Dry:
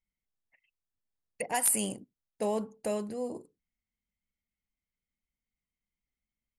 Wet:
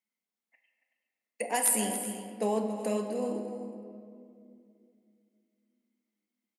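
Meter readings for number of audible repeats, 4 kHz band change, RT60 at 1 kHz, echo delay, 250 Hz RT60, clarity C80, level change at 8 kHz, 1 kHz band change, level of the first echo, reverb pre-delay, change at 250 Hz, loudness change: 2, +1.5 dB, 2.2 s, 279 ms, 3.5 s, 5.5 dB, +1.0 dB, +2.5 dB, −12.0 dB, 4 ms, +4.0 dB, +1.0 dB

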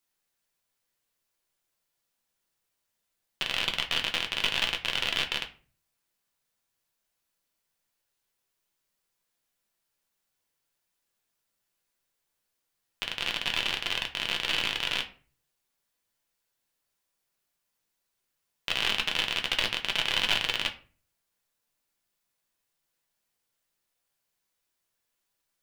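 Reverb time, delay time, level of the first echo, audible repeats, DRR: 0.40 s, no echo audible, no echo audible, no echo audible, 2.5 dB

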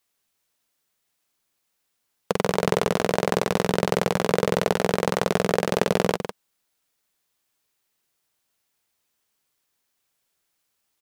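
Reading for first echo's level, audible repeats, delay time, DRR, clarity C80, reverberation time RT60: −8.0 dB, 1, 155 ms, no reverb audible, no reverb audible, no reverb audible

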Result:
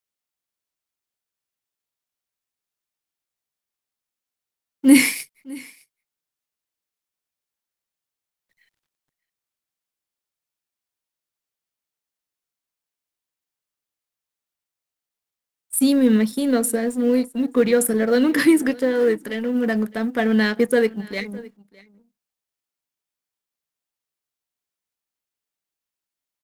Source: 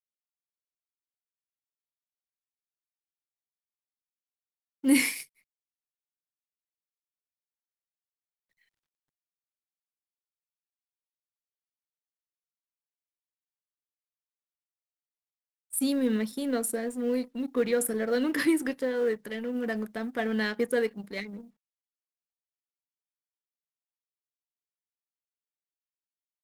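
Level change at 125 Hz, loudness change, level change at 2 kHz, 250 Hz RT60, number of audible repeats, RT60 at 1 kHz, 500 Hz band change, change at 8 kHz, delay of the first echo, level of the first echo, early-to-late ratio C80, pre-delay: can't be measured, +9.5 dB, +8.0 dB, no reverb audible, 1, no reverb audible, +8.5 dB, +8.0 dB, 610 ms, −22.5 dB, no reverb audible, no reverb audible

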